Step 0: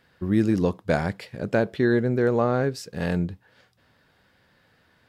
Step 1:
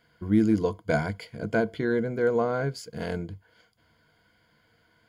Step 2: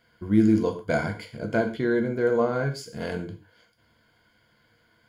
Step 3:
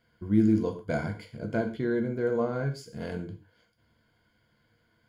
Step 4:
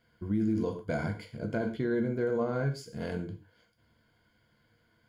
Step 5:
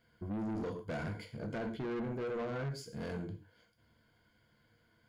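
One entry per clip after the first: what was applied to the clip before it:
ripple EQ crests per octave 1.8, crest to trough 12 dB; gain -4.5 dB
non-linear reverb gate 0.16 s falling, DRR 4 dB
low shelf 360 Hz +6.5 dB; gain -7.5 dB
limiter -21.5 dBFS, peak gain reduction 9.5 dB
soft clip -33 dBFS, distortion -8 dB; gain -1.5 dB

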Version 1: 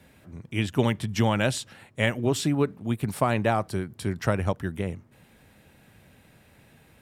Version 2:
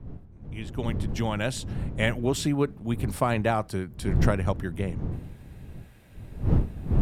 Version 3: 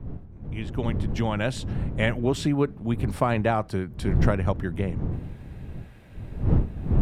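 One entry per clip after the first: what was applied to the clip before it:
opening faded in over 2.06 s; wind noise 130 Hz -29 dBFS; gain -1 dB
high shelf 5600 Hz -12 dB; in parallel at -2.5 dB: compressor, threshold -32 dBFS, peak gain reduction 15.5 dB

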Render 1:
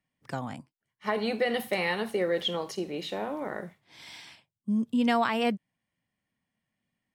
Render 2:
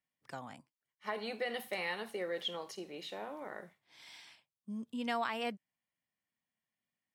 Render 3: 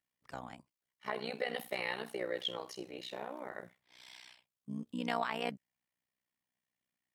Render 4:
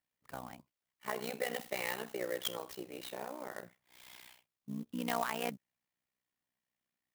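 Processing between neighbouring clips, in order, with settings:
low shelf 330 Hz -10 dB; gain -7.5 dB
AM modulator 62 Hz, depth 85%; gain +4 dB
clock jitter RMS 0.038 ms

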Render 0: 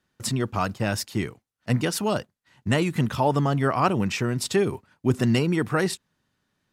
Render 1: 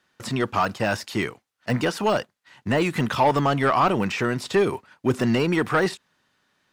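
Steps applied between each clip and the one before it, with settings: de-esser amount 95%; overdrive pedal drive 15 dB, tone 4900 Hz, clips at -9 dBFS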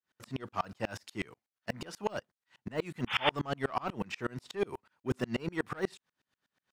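painted sound noise, 3.07–3.3, 750–3600 Hz -18 dBFS; dB-ramp tremolo swelling 8.2 Hz, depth 32 dB; gain -5.5 dB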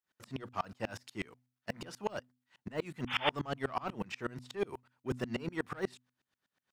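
de-hum 124.9 Hz, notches 2; gain -2.5 dB

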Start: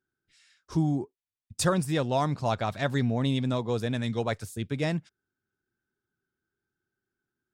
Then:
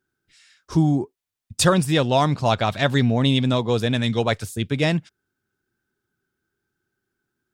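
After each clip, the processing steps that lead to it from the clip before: dynamic EQ 3100 Hz, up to +6 dB, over -50 dBFS, Q 1.7; gain +7.5 dB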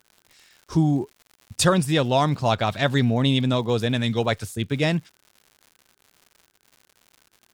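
crackle 150/s -38 dBFS; gain -1.5 dB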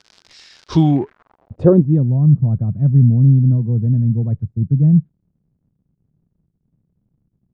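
low-pass sweep 5100 Hz -> 160 Hz, 0.61–2.08; gain +6.5 dB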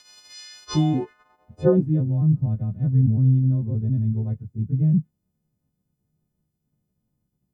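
frequency quantiser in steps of 3 st; gain -6.5 dB

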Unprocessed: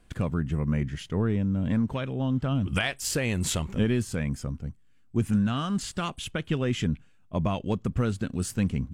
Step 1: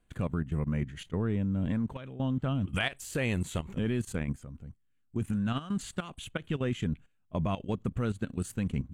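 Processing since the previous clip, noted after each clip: bell 5200 Hz -12 dB 0.25 oct; level quantiser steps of 14 dB; gain -1 dB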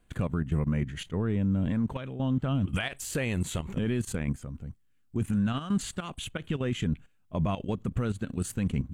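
limiter -25 dBFS, peak gain reduction 9 dB; gain +5.5 dB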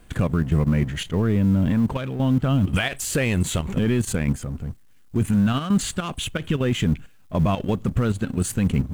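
G.711 law mismatch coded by mu; gain +7 dB

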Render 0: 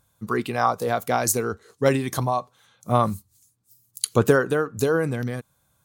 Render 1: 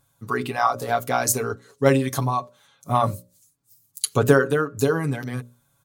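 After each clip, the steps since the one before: notches 60/120/180/240/300/360/420/480/540/600 Hz; comb 7.2 ms, depth 75%; gain -1 dB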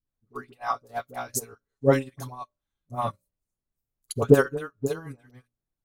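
added noise brown -51 dBFS; dispersion highs, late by 72 ms, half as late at 790 Hz; upward expander 2.5:1, over -36 dBFS; gain +2.5 dB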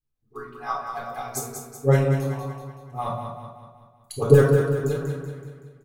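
feedback echo 0.189 s, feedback 49%, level -7 dB; shoebox room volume 990 m³, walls furnished, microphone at 3.9 m; gain -4.5 dB

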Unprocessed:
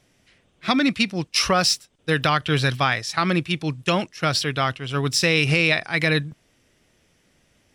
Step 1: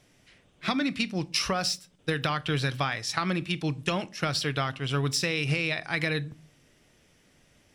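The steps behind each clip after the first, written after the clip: compressor, threshold -25 dBFS, peak gain reduction 10.5 dB; on a send at -15.5 dB: reverb RT60 0.40 s, pre-delay 7 ms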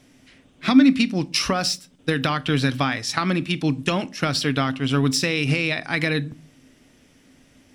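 bell 260 Hz +13.5 dB 0.29 oct; gain +5 dB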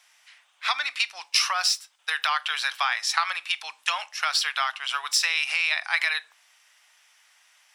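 steep high-pass 840 Hz 36 dB/oct; gain +1 dB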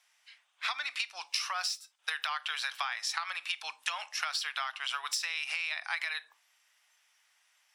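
spectral noise reduction 10 dB; compressor, threshold -31 dBFS, peak gain reduction 13.5 dB

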